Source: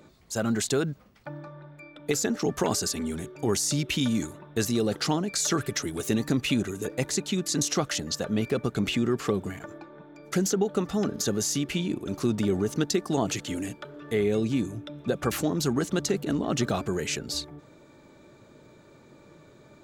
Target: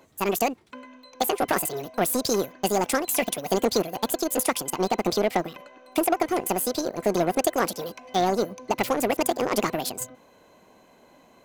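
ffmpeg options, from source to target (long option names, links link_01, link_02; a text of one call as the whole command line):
ffmpeg -i in.wav -af "aeval=exprs='0.251*(cos(1*acos(clip(val(0)/0.251,-1,1)))-cos(1*PI/2))+0.0178*(cos(7*acos(clip(val(0)/0.251,-1,1)))-cos(7*PI/2))':channel_layout=same,asetrate=76440,aresample=44100,volume=3.5dB" out.wav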